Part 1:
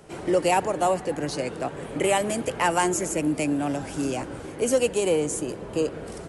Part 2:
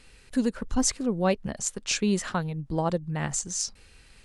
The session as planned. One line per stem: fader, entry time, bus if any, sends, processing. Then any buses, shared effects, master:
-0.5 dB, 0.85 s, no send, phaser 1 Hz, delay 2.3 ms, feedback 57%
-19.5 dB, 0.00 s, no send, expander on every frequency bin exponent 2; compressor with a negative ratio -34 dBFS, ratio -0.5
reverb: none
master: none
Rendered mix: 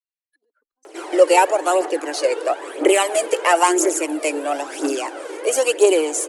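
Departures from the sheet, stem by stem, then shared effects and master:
stem 1 -0.5 dB -> +6.5 dB; master: extra elliptic high-pass 320 Hz, stop band 40 dB

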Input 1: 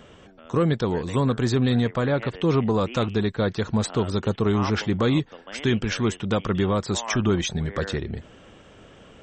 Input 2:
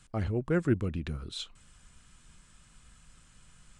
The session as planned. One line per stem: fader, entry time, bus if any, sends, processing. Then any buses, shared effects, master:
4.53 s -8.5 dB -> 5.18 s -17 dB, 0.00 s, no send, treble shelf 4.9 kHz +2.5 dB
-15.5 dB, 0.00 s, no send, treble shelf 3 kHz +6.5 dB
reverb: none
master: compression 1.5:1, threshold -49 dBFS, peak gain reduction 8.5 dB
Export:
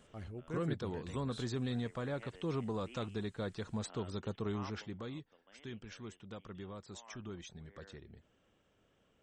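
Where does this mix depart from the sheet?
stem 1 -8.5 dB -> -16.0 dB; master: missing compression 1.5:1, threshold -49 dBFS, peak gain reduction 8.5 dB

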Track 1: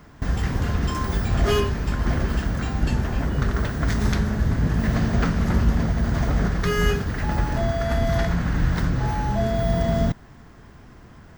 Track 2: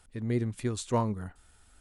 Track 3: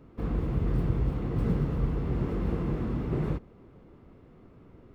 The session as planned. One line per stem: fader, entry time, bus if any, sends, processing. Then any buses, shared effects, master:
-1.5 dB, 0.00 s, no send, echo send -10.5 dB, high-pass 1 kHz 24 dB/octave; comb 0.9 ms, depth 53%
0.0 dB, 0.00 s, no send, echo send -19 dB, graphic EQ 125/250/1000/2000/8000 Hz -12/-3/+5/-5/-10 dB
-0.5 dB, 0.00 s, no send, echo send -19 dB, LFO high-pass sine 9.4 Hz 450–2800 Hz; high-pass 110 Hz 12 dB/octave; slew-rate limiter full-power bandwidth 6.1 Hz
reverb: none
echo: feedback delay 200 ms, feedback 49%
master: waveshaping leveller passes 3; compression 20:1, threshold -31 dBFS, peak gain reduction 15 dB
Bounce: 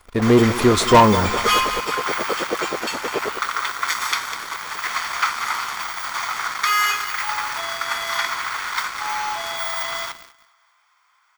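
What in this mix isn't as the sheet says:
stem 2 0.0 dB -> +11.0 dB; stem 3: missing slew-rate limiter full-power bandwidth 6.1 Hz; master: missing compression 20:1, threshold -31 dBFS, peak gain reduction 15 dB

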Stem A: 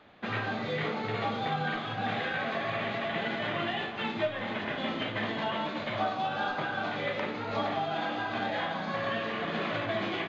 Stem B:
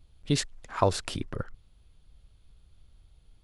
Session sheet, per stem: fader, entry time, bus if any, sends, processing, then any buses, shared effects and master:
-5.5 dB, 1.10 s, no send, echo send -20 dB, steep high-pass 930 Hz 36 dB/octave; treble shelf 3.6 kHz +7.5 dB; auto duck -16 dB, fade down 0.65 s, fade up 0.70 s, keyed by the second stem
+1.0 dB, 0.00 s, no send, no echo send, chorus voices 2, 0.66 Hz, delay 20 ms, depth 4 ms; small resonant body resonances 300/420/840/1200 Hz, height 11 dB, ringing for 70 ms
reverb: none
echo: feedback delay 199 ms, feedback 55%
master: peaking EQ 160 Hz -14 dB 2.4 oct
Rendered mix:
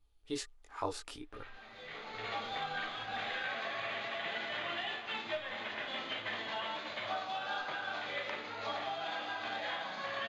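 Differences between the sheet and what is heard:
stem A: missing steep high-pass 930 Hz 36 dB/octave; stem B +1.0 dB -> -8.0 dB

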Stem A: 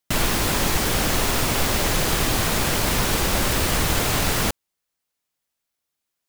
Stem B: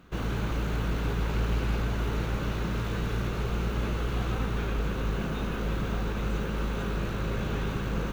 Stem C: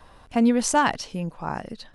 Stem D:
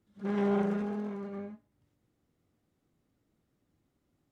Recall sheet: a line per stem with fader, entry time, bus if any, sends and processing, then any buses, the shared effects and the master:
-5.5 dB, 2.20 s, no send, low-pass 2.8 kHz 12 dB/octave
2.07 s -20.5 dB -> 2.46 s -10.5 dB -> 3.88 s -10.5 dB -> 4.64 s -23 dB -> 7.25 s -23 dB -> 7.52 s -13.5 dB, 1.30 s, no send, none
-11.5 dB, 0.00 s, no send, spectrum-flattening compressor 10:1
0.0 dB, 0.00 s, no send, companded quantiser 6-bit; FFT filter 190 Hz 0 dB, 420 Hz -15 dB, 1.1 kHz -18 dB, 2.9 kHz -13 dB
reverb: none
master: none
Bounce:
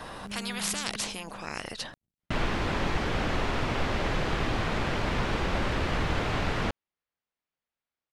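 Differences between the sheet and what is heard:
stem B: muted; stem C -11.5 dB -> -3.5 dB; stem D 0.0 dB -> -7.5 dB

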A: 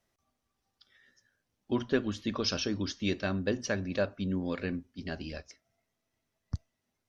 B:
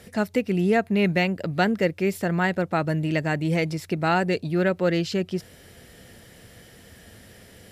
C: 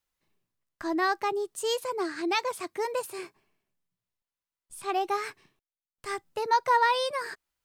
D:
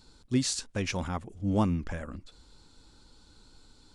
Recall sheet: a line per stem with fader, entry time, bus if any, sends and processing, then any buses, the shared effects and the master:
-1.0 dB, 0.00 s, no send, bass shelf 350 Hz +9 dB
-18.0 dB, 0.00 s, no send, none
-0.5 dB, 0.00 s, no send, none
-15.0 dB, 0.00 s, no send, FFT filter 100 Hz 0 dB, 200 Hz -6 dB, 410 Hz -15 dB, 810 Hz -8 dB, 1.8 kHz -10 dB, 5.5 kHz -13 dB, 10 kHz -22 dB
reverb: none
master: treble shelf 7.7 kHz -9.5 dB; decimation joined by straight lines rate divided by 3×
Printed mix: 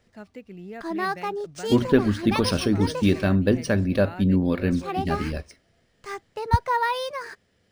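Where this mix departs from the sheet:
stem A -1.0 dB -> +5.5 dB; stem D: muted; master: missing treble shelf 7.7 kHz -9.5 dB

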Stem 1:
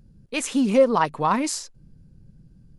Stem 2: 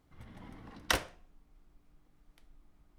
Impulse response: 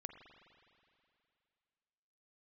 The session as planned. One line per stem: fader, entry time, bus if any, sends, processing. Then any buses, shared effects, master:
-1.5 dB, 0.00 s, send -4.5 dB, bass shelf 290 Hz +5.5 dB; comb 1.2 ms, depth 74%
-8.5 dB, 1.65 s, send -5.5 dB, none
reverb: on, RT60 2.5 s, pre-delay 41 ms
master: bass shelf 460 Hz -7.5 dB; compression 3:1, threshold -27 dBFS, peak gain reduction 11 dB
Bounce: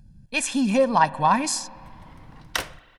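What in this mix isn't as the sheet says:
stem 2 -8.5 dB -> +1.5 dB; master: missing compression 3:1, threshold -27 dBFS, peak gain reduction 11 dB

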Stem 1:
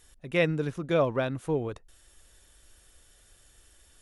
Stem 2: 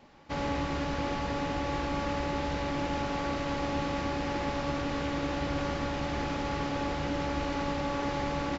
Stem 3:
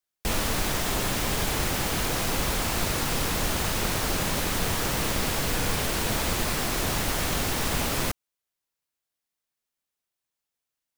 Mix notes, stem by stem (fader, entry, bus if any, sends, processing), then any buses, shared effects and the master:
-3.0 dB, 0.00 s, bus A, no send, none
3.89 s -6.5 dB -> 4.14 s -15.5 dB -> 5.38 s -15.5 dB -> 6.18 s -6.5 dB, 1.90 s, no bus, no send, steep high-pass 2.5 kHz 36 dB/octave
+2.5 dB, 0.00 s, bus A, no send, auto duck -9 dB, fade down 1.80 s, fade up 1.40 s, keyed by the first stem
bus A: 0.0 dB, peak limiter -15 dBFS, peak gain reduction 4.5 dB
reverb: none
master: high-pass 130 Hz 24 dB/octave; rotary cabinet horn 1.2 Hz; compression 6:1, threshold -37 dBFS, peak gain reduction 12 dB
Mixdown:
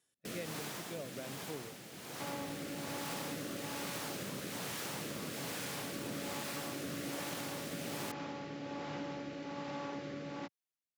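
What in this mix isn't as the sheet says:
stem 1 -3.0 dB -> -14.5 dB; stem 2: missing steep high-pass 2.5 kHz 36 dB/octave; stem 3 +2.5 dB -> -9.0 dB

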